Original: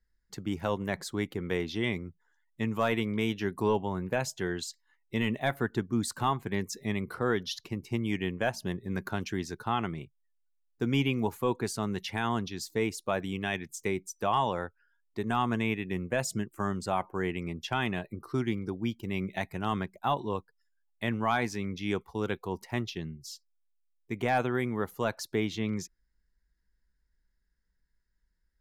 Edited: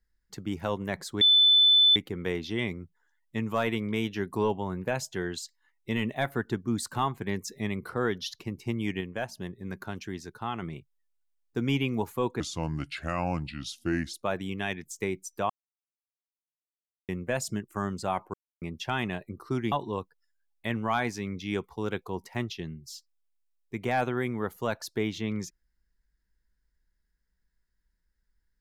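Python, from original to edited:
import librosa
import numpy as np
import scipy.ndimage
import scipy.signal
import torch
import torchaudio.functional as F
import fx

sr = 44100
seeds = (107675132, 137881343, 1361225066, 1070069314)

y = fx.edit(x, sr, fx.insert_tone(at_s=1.21, length_s=0.75, hz=3510.0, db=-16.0),
    fx.clip_gain(start_s=8.26, length_s=1.61, db=-4.0),
    fx.speed_span(start_s=11.65, length_s=1.32, speed=0.76),
    fx.silence(start_s=14.33, length_s=1.59),
    fx.silence(start_s=17.17, length_s=0.28),
    fx.cut(start_s=18.55, length_s=1.54), tone=tone)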